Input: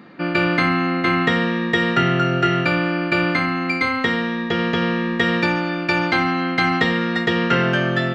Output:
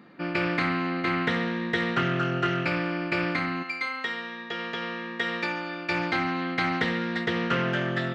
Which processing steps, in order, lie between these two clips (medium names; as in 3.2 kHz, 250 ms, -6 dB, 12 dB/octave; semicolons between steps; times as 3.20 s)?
3.62–5.89 s: high-pass 1.3 kHz -> 380 Hz 6 dB/octave; loudspeaker Doppler distortion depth 0.16 ms; trim -8 dB